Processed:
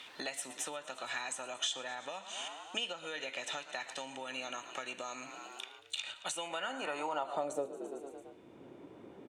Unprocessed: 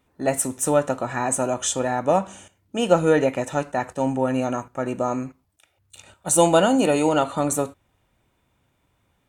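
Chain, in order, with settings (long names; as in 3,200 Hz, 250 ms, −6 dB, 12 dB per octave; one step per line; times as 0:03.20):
echo with shifted repeats 112 ms, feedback 61%, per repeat +33 Hz, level −18 dB
downward compressor 12 to 1, threshold −30 dBFS, peak gain reduction 20 dB
band-pass filter sweep 3,500 Hz → 360 Hz, 0:06.19–0:07.87
multiband upward and downward compressor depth 70%
level +11.5 dB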